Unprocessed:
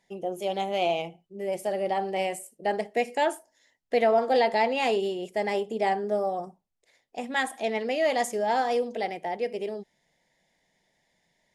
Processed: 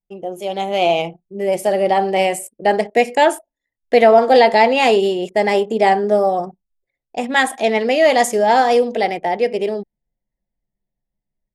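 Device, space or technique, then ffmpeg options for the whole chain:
voice memo with heavy noise removal: -af "anlmdn=0.00398,dynaudnorm=f=500:g=3:m=8dB,volume=4dB"

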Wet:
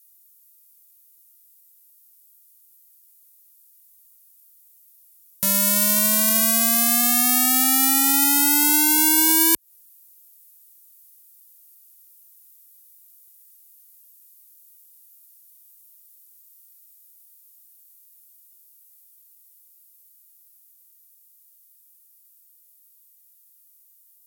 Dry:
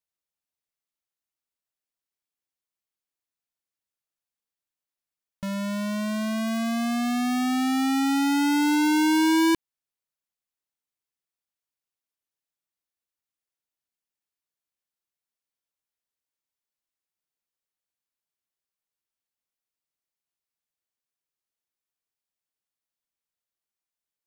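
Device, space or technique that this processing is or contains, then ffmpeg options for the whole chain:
FM broadcast chain: -filter_complex "[0:a]highpass=42,dynaudnorm=f=570:g=21:m=3dB,acrossover=split=360|2700[a][b][c];[a]acompressor=threshold=-31dB:ratio=4[d];[b]acompressor=threshold=-27dB:ratio=4[e];[c]acompressor=threshold=-38dB:ratio=4[f];[d][e][f]amix=inputs=3:normalize=0,aemphasis=mode=production:type=75fm,alimiter=limit=-18dB:level=0:latency=1:release=142,asoftclip=type=hard:threshold=-21dB,lowpass=f=15k:w=0.5412,lowpass=f=15k:w=1.3066,aemphasis=mode=production:type=75fm,volume=6.5dB"

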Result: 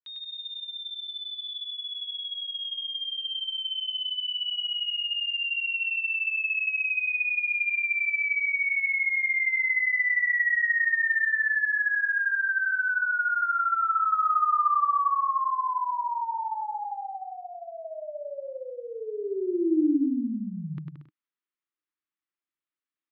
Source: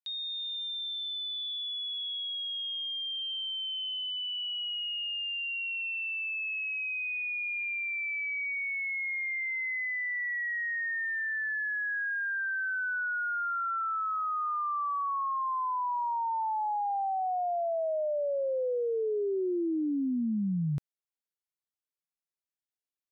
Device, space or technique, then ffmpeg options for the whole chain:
kitchen radio: -af "highpass=180,equalizer=f=190:t=q:w=4:g=-6,equalizer=f=310:t=q:w=4:g=9,equalizer=f=480:t=q:w=4:g=-7,equalizer=f=710:t=q:w=4:g=-10,equalizer=f=1.2k:t=q:w=4:g=6,equalizer=f=1.9k:t=q:w=4:g=3,lowpass=f=3.5k:w=0.5412,lowpass=f=3.5k:w=1.3066,equalizer=f=560:t=o:w=0.77:g=-3.5,aecho=1:1:100|175|231.2|273.4|305.1:0.631|0.398|0.251|0.158|0.1,adynamicequalizer=threshold=0.0158:dfrequency=1600:dqfactor=0.7:tfrequency=1600:tqfactor=0.7:attack=5:release=100:ratio=0.375:range=2.5:mode=boostabove:tftype=highshelf"

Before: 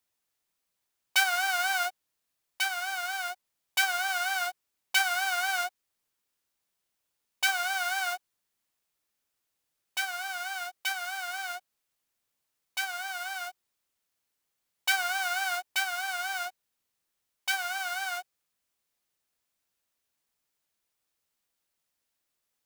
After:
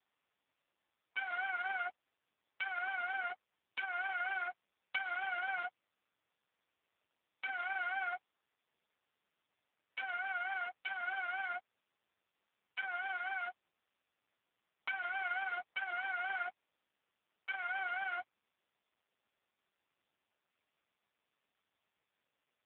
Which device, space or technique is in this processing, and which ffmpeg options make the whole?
voicemail: -filter_complex "[0:a]asettb=1/sr,asplit=3[a][b][c];[a]atrim=end=8.134[d];[b]atrim=start=8.13:end=9.99,asetpts=PTS-STARTPTS,afade=t=in:d=0.004:c=qsin,afade=t=out:st=1.856:d=0.004:c=qsin,highpass=f=290:w=0.5412,highpass=f=290:w=1.3066[e];[c]atrim=start=9.986[f];[d][e]acrossfade=d=0.004:c1=hsin:c2=qsin[g];[g][f]acrossfade=d=0.004:c1=qsin:c2=hsin,highpass=300,lowpass=2.7k,acompressor=threshold=-34dB:ratio=10,volume=1dB" -ar 8000 -c:a libopencore_amrnb -b:a 4750

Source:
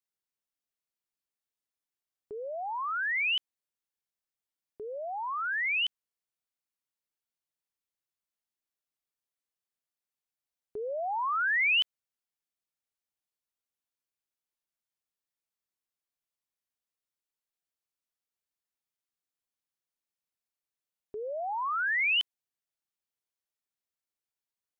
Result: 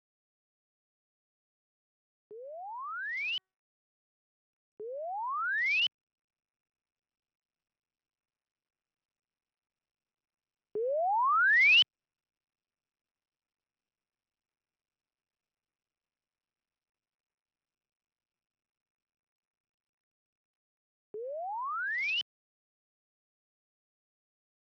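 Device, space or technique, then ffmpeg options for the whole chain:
Bluetooth headset: -filter_complex "[0:a]asettb=1/sr,asplit=3[a][b][c];[a]atrim=end=3.184[d];[b]atrim=start=3.18:end=4.96,asetpts=PTS-STARTPTS,afade=t=in:d=0.004:c=qsin,afade=t=out:st=1.776:d=0.004:c=qsin,bandreject=f=376.5:t=h:w=4,bandreject=f=753:t=h:w=4,bandreject=f=1.1295k:t=h:w=4,bandreject=f=1.506k:t=h:w=4,bandreject=f=1.8825k:t=h:w=4[e];[c]atrim=start=4.956[f];[d][e]acrossfade=d=0.004:c1=hsin:c2=qsin[g];[g][f]acrossfade=d=0.004:c1=qsin:c2=hsin,highpass=f=120:w=0.5412,highpass=f=120:w=1.3066,dynaudnorm=f=610:g=17:m=12dB,aresample=8000,aresample=44100,volume=-9dB" -ar 44100 -c:a sbc -b:a 64k

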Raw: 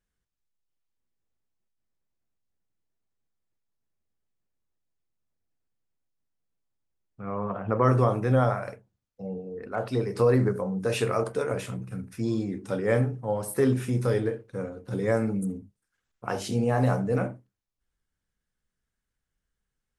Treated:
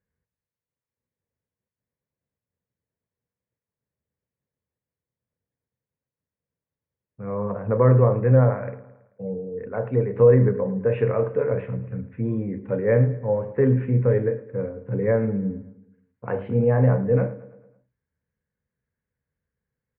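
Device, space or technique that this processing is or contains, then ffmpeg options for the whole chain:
bass cabinet: -filter_complex "[0:a]lowpass=f=2.7k:w=0.5412,lowpass=f=2.7k:w=1.3066,highpass=79,equalizer=f=83:t=q:w=4:g=6,equalizer=f=130:t=q:w=4:g=5,equalizer=f=330:t=q:w=4:g=-6,equalizer=f=490:t=q:w=4:g=6,equalizer=f=750:t=q:w=4:g=-7,equalizer=f=1.3k:t=q:w=4:g=-9,lowpass=f=2.1k:w=0.5412,lowpass=f=2.1k:w=1.3066,asplit=2[a][b];[b]adelay=109,lowpass=f=4.7k:p=1,volume=-17dB,asplit=2[c][d];[d]adelay=109,lowpass=f=4.7k:p=1,volume=0.54,asplit=2[e][f];[f]adelay=109,lowpass=f=4.7k:p=1,volume=0.54,asplit=2[g][h];[h]adelay=109,lowpass=f=4.7k:p=1,volume=0.54,asplit=2[i][j];[j]adelay=109,lowpass=f=4.7k:p=1,volume=0.54[k];[a][c][e][g][i][k]amix=inputs=6:normalize=0,volume=3dB"

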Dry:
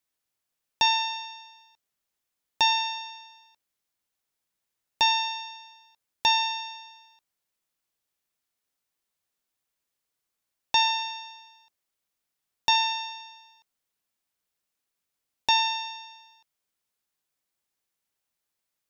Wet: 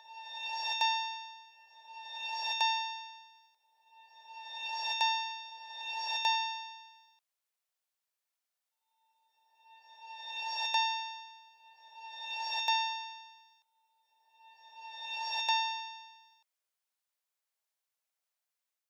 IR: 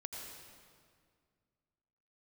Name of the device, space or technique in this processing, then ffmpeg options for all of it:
ghost voice: -filter_complex "[0:a]areverse[a];[1:a]atrim=start_sample=2205[b];[a][b]afir=irnorm=-1:irlink=0,areverse,highpass=f=520:w=0.5412,highpass=f=520:w=1.3066,volume=-3dB"

